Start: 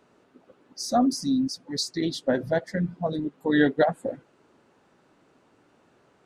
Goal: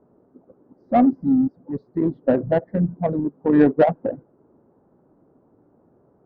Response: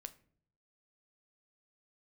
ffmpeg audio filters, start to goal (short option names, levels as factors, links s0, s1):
-af "lowpass=1200,adynamicsmooth=sensitivity=0.5:basefreq=810,volume=2.11"